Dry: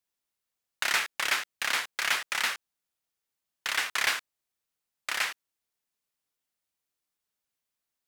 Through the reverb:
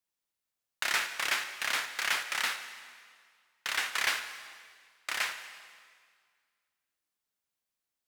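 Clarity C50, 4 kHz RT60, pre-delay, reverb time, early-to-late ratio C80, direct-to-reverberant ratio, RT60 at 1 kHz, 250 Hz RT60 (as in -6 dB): 9.0 dB, 1.8 s, 5 ms, 1.9 s, 10.5 dB, 7.5 dB, 1.9 s, 1.9 s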